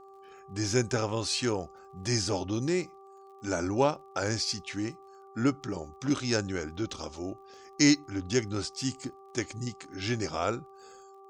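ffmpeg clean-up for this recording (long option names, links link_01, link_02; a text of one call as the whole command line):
ffmpeg -i in.wav -af "adeclick=threshold=4,bandreject=frequency=390:width_type=h:width=4,bandreject=frequency=780:width_type=h:width=4,bandreject=frequency=1170:width_type=h:width=4" out.wav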